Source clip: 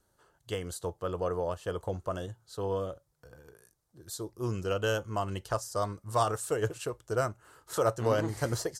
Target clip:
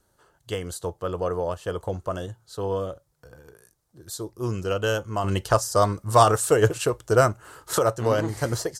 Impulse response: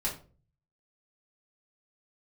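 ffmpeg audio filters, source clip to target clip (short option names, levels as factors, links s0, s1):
-filter_complex "[0:a]asettb=1/sr,asplit=3[s0][s1][s2];[s0]atrim=end=5.244[s3];[s1]atrim=start=5.24:end=7.79,asetpts=PTS-STARTPTS,afade=t=in:d=0.004:c=qsin,afade=t=out:st=2.546:d=0.004:c=qsin,acontrast=65[s4];[s2]atrim=start=7.786[s5];[s3][s4]acrossfade=d=0.004:c1=hsin:c2=qsin[s6];[s6][s5]acrossfade=d=0.004:c1=qsin:c2=hsin,volume=1.78"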